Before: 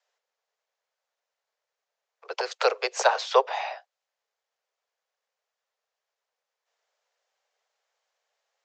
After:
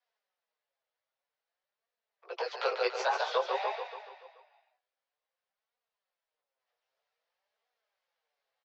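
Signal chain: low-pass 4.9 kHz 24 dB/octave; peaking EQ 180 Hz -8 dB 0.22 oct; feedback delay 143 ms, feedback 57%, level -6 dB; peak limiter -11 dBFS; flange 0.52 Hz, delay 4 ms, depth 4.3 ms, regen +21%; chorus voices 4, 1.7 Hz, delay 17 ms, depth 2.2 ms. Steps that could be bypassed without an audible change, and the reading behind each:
peaking EQ 180 Hz: input has nothing below 360 Hz

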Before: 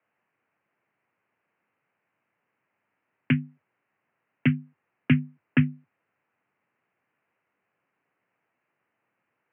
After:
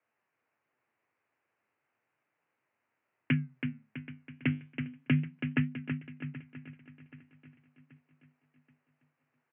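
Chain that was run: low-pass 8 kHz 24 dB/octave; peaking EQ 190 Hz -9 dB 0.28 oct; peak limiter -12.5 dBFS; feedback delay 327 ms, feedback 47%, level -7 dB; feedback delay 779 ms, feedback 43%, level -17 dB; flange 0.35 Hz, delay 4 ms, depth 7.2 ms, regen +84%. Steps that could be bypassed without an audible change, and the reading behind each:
low-pass 8 kHz: input has nothing above 2.7 kHz

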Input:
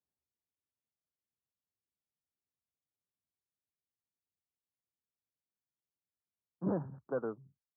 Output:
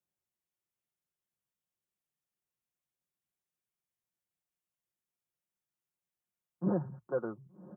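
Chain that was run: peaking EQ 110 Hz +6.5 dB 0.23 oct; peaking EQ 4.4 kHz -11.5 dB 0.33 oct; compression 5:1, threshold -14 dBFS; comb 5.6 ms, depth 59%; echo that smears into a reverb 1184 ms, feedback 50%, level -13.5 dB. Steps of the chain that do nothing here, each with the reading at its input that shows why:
peaking EQ 4.4 kHz: input has nothing above 1.1 kHz; compression, threshold -14 dBFS: peak at its input -22.5 dBFS

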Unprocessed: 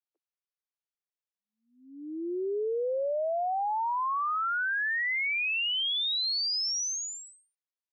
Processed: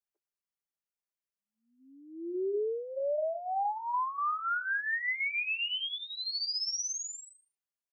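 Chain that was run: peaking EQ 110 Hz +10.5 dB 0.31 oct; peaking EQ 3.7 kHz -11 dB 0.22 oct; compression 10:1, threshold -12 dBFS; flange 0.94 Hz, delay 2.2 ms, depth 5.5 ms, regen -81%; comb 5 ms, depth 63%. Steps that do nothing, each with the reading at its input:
peaking EQ 110 Hz: input has nothing below 250 Hz; compression, threshold -12 dBFS: peak at its input -26.5 dBFS

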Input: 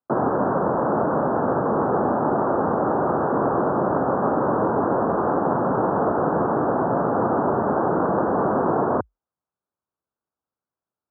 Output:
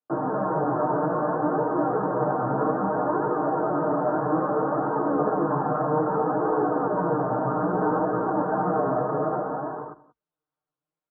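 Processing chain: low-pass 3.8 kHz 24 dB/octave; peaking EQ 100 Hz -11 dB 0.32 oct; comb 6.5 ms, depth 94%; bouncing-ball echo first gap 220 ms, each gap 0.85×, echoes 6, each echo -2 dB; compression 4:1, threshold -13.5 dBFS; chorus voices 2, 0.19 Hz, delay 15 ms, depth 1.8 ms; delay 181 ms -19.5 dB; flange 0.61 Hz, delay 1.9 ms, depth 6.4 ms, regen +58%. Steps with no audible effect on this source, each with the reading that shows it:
low-pass 3.8 kHz: input has nothing above 1.8 kHz

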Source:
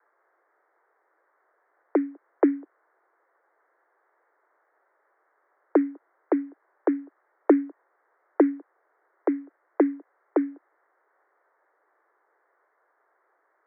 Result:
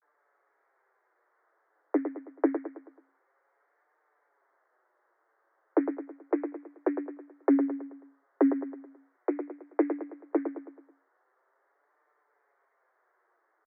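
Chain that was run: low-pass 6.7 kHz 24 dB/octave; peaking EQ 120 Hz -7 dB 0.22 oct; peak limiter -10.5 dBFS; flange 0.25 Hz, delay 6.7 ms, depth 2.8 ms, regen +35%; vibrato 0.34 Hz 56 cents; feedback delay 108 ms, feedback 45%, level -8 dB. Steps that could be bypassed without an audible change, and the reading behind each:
low-pass 6.7 kHz: input has nothing above 1 kHz; peaking EQ 120 Hz: input has nothing below 250 Hz

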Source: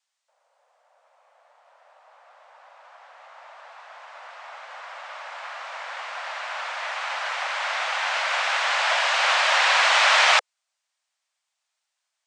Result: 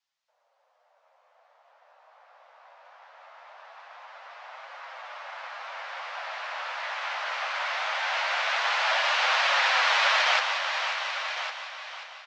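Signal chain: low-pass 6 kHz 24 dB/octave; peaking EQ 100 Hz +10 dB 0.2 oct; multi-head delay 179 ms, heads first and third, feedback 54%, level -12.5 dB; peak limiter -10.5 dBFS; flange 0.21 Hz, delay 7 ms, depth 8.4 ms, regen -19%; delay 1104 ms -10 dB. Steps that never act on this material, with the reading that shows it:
peaking EQ 100 Hz: input has nothing below 430 Hz

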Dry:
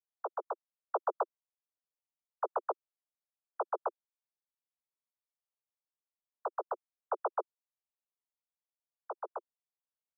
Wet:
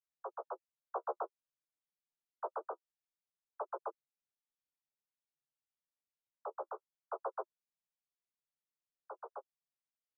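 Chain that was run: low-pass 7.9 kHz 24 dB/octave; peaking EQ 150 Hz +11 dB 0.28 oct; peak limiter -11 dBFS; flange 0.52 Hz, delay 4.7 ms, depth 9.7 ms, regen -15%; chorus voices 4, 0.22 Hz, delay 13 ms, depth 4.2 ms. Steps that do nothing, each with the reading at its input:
low-pass 7.9 kHz: input has nothing above 1.6 kHz; peaking EQ 150 Hz: input has nothing below 320 Hz; peak limiter -11 dBFS: peak at its input -22.5 dBFS

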